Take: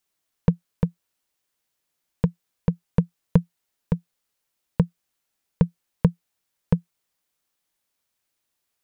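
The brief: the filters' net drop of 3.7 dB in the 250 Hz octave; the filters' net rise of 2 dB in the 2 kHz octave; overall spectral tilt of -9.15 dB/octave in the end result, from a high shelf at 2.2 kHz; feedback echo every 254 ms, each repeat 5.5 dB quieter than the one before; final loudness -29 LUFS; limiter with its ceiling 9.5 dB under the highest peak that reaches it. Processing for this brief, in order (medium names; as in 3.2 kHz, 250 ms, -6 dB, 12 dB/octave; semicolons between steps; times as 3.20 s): peaking EQ 250 Hz -7.5 dB; peaking EQ 2 kHz +5.5 dB; treble shelf 2.2 kHz -5.5 dB; peak limiter -16 dBFS; feedback delay 254 ms, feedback 53%, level -5.5 dB; trim +7.5 dB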